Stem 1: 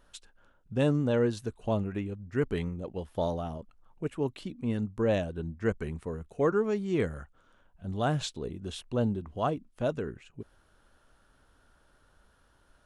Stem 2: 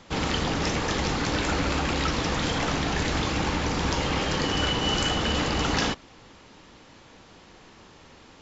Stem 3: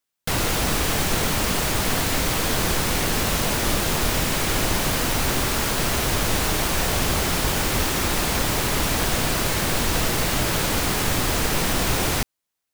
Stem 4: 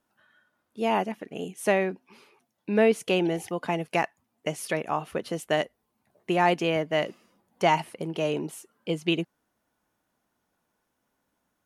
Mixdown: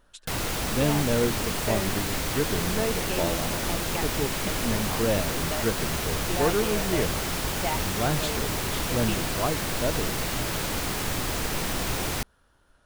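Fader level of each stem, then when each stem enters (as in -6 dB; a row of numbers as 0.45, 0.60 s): +1.0 dB, off, -6.5 dB, -9.0 dB; 0.00 s, off, 0.00 s, 0.00 s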